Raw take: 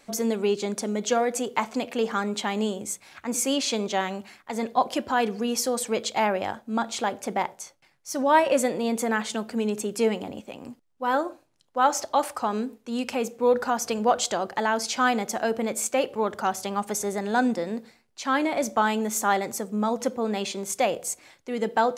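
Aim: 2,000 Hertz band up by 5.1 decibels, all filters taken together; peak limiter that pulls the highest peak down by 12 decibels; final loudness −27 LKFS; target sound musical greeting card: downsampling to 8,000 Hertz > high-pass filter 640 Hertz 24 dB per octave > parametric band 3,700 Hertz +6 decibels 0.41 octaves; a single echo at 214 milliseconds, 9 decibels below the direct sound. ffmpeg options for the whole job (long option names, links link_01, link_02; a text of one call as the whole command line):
ffmpeg -i in.wav -af "equalizer=frequency=2000:width_type=o:gain=6.5,alimiter=limit=-17.5dB:level=0:latency=1,aecho=1:1:214:0.355,aresample=8000,aresample=44100,highpass=frequency=640:width=0.5412,highpass=frequency=640:width=1.3066,equalizer=frequency=3700:width_type=o:width=0.41:gain=6,volume=5dB" out.wav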